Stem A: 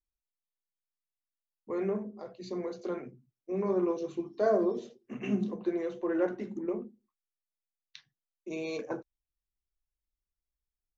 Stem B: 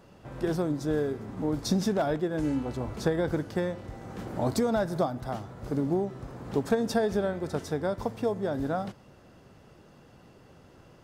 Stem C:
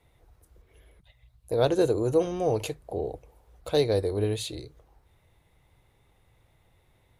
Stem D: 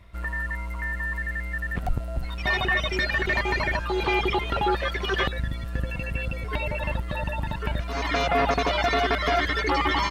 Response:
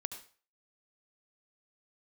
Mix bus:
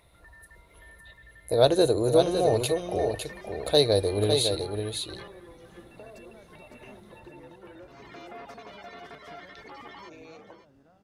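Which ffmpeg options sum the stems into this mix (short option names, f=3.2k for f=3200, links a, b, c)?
-filter_complex "[0:a]highpass=380,acompressor=threshold=-42dB:ratio=6,adelay=1600,volume=-5dB[a];[1:a]acompressor=threshold=-38dB:ratio=6,adelay=1600,volume=-13.5dB,asplit=2[b][c];[c]volume=-7dB[d];[2:a]equalizer=f=630:t=o:w=0.33:g=7,equalizer=f=4k:t=o:w=0.33:g=11,equalizer=f=10k:t=o:w=0.33:g=12,volume=0.5dB,asplit=2[e][f];[f]volume=-6dB[g];[3:a]highpass=f=630:p=1,tiltshelf=f=810:g=4,acompressor=mode=upward:threshold=-38dB:ratio=2.5,volume=-19dB,asplit=2[h][i];[i]volume=-12.5dB[j];[d][g][j]amix=inputs=3:normalize=0,aecho=0:1:557:1[k];[a][b][e][h][k]amix=inputs=5:normalize=0"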